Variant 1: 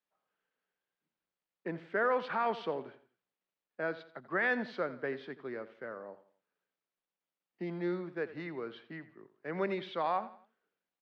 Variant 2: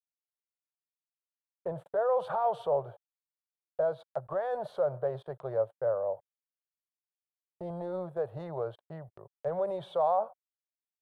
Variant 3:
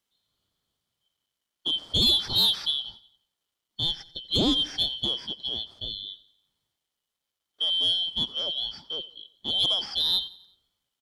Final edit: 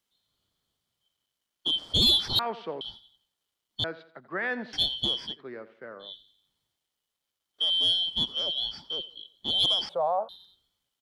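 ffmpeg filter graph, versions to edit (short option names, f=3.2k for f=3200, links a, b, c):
-filter_complex "[0:a]asplit=3[a][b][c];[2:a]asplit=5[d][e][f][g][h];[d]atrim=end=2.392[i];[a]atrim=start=2.388:end=2.812[j];[e]atrim=start=2.808:end=3.842[k];[b]atrim=start=3.838:end=4.732[l];[f]atrim=start=4.728:end=5.42[m];[c]atrim=start=5.26:end=6.15[n];[g]atrim=start=5.99:end=9.892[o];[1:a]atrim=start=9.888:end=10.292[p];[h]atrim=start=10.288[q];[i][j]acrossfade=d=0.004:c1=hsin:c2=hsin[r];[r][k]acrossfade=d=0.004:c1=hsin:c2=hsin[s];[s][l]acrossfade=d=0.004:c1=hsin:c2=hsin[t];[t][m]acrossfade=d=0.004:c1=hsin:c2=hsin[u];[u][n]acrossfade=d=0.16:c1=tri:c2=tri[v];[v][o]acrossfade=d=0.16:c1=tri:c2=tri[w];[w][p]acrossfade=d=0.004:c1=hsin:c2=hsin[x];[x][q]acrossfade=d=0.004:c1=hsin:c2=hsin"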